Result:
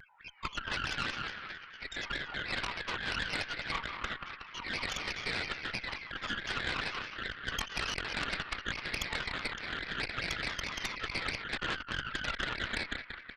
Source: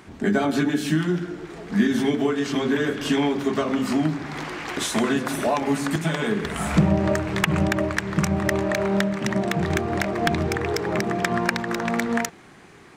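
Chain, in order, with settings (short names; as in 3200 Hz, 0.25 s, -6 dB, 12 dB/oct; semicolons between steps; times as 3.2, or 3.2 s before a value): random spectral dropouts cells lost 75%; varispeed -3%; steep high-pass 1300 Hz 36 dB/oct; in parallel at -4.5 dB: bit-crush 5-bit; on the sum: downsampling 8000 Hz; air absorption 54 m; on a send: feedback echo 0.186 s, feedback 60%, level -9 dB; on the sum: formant-preserving pitch shift -4.5 st; non-linear reverb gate 0.29 s rising, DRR 7.5 dB; negative-ratio compressor -40 dBFS, ratio -1; added harmonics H 6 -10 dB, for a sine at -22 dBFS; shaped vibrato saw down 4.7 Hz, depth 160 cents; gain +1.5 dB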